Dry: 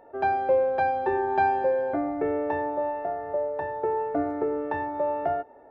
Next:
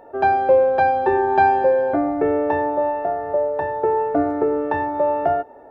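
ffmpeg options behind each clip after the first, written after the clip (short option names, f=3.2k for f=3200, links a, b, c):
-af "equalizer=f=2.1k:t=o:w=0.24:g=-4.5,volume=7.5dB"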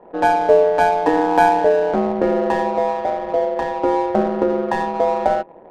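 -af "aeval=exprs='val(0)*sin(2*PI*84*n/s)':c=same,adynamicsmooth=sensitivity=4.5:basefreq=1k,volume=4.5dB"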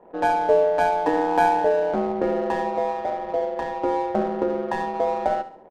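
-af "aecho=1:1:69|138|207|276:0.211|0.0845|0.0338|0.0135,volume=-5.5dB"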